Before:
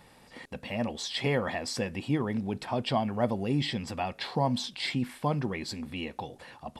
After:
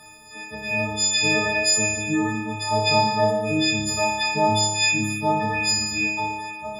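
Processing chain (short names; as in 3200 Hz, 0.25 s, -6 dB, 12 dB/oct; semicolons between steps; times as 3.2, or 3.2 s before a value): frequency quantiser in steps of 6 st; flutter echo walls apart 4.9 m, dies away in 1.3 s; attack slew limiter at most 210 dB/s; gain +2 dB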